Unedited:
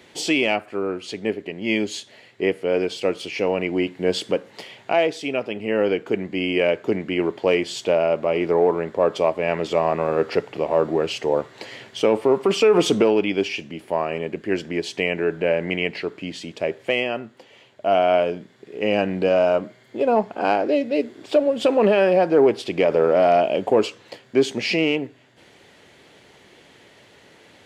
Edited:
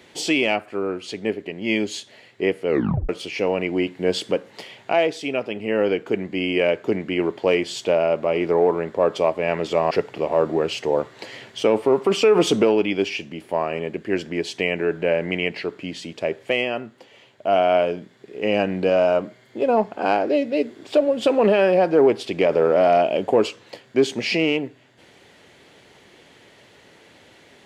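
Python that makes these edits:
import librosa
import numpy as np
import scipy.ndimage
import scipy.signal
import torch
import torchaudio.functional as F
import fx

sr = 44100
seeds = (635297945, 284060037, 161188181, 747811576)

y = fx.edit(x, sr, fx.tape_stop(start_s=2.67, length_s=0.42),
    fx.cut(start_s=9.91, length_s=0.39), tone=tone)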